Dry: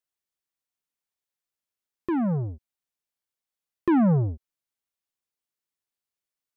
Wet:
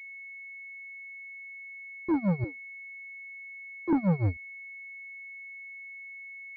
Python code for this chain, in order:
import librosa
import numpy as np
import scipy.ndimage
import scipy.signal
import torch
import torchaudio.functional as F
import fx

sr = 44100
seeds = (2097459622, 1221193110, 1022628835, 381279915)

y = fx.wiener(x, sr, points=41)
y = fx.steep_highpass(y, sr, hz=210.0, slope=36, at=(2.44, 3.93))
y = fx.leveller(y, sr, passes=3)
y = y * (1.0 - 0.93 / 2.0 + 0.93 / 2.0 * np.cos(2.0 * np.pi * 6.1 * (np.arange(len(y)) / sr)))
y = fx.pwm(y, sr, carrier_hz=2200.0)
y = y * 10.0 ** (-4.0 / 20.0)